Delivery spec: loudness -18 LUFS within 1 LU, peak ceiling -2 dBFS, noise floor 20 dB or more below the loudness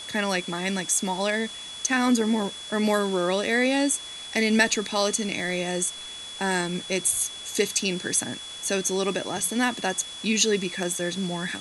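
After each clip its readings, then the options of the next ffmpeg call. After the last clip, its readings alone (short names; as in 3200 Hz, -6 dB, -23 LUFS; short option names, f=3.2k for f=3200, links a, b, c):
steady tone 3400 Hz; tone level -37 dBFS; noise floor -39 dBFS; noise floor target -45 dBFS; loudness -25.0 LUFS; peak -7.0 dBFS; loudness target -18.0 LUFS
-> -af "bandreject=f=3.4k:w=30"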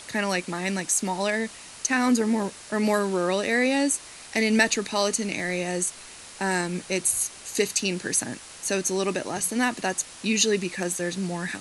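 steady tone none; noise floor -44 dBFS; noise floor target -46 dBFS
-> -af "afftdn=nr=6:nf=-44"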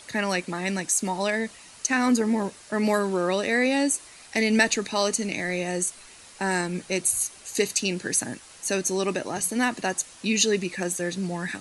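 noise floor -48 dBFS; loudness -25.5 LUFS; peak -7.0 dBFS; loudness target -18.0 LUFS
-> -af "volume=7.5dB,alimiter=limit=-2dB:level=0:latency=1"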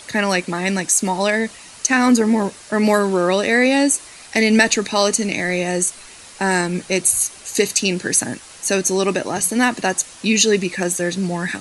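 loudness -18.0 LUFS; peak -2.0 dBFS; noise floor -41 dBFS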